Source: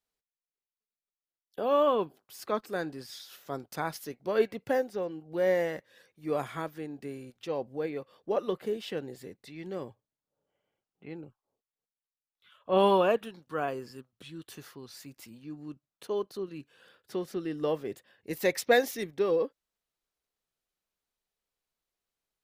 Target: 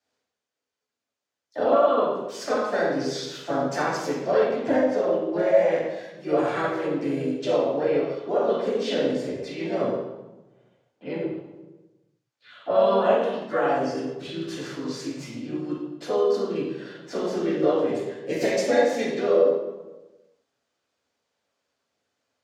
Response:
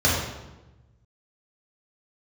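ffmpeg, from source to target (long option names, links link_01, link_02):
-filter_complex "[0:a]highpass=230,lowpass=7000,acompressor=threshold=-34dB:ratio=6,bandreject=frequency=314.1:width_type=h:width=4,bandreject=frequency=628.2:width_type=h:width=4,bandreject=frequency=942.3:width_type=h:width=4,bandreject=frequency=1256.4:width_type=h:width=4,bandreject=frequency=1570.5:width_type=h:width=4,bandreject=frequency=1884.6:width_type=h:width=4,bandreject=frequency=2198.7:width_type=h:width=4[link_01];[1:a]atrim=start_sample=2205[link_02];[link_01][link_02]afir=irnorm=-1:irlink=0,asplit=2[link_03][link_04];[link_04]asetrate=52444,aresample=44100,atempo=0.840896,volume=-5dB[link_05];[link_03][link_05]amix=inputs=2:normalize=0,volume=-5dB"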